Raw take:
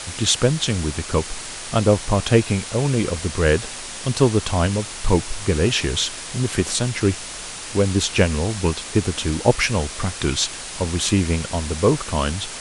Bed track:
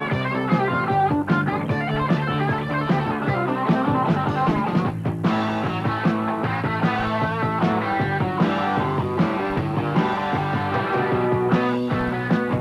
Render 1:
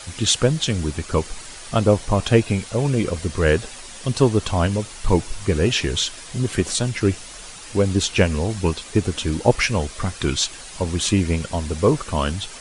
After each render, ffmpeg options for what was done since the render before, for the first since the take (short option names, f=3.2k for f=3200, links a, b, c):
-af "afftdn=nr=8:nf=-33"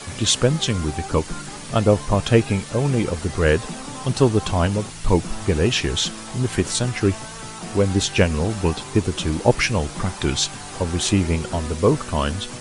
-filter_complex "[1:a]volume=-14.5dB[a];[0:a][a]amix=inputs=2:normalize=0"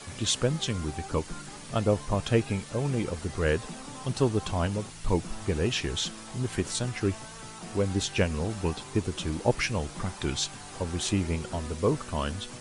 -af "volume=-8.5dB"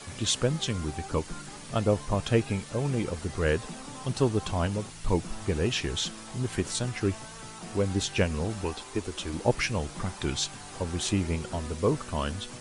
-filter_complex "[0:a]asettb=1/sr,asplit=3[a][b][c];[a]atrim=end=8.644[d];[b]atrim=start=8.64:end=9.34,asetpts=PTS-STARTPTS,afade=t=in:d=0.004:c=qsin,afade=t=out:st=0.696:d=0.004:c=qsin,equalizer=f=140:w=1.3:g=-13.5[e];[c]atrim=start=9.336[f];[d][e]acrossfade=d=0.004:c1=hsin:c2=qsin[g];[g][f]acrossfade=d=0.004:c1=qsin:c2=hsin"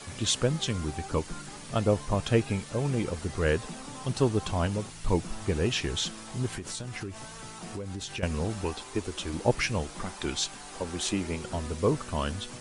-filter_complex "[0:a]asettb=1/sr,asplit=3[a][b][c];[a]atrim=end=6.564[d];[b]atrim=start=6.56:end=8.23,asetpts=PTS-STARTPTS,afade=t=in:d=0.004:c=qsin,afade=t=out:st=1.666:d=0.004:c=qsin,acompressor=threshold=-32dB:ratio=10:attack=3.2:release=140:knee=1:detection=peak[e];[c]atrim=start=8.226[f];[d][e]acrossfade=d=0.004:c1=hsin:c2=qsin[g];[g][f]acrossfade=d=0.004:c1=qsin:c2=hsin,asettb=1/sr,asplit=3[h][i][j];[h]atrim=end=9.834[k];[i]atrim=start=9.83:end=11.44,asetpts=PTS-STARTPTS,afade=t=in:d=0.004:c=qsin,afade=t=out:st=1.606:d=0.004:c=qsin,equalizer=f=110:w=1.5:g=-12[l];[j]atrim=start=11.436[m];[k][l]acrossfade=d=0.004:c1=hsin:c2=qsin[n];[n][m]acrossfade=d=0.004:c1=qsin:c2=hsin"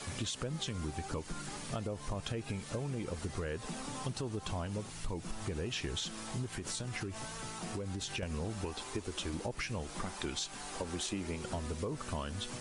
-af "alimiter=limit=-21dB:level=0:latency=1:release=134,acompressor=threshold=-35dB:ratio=4"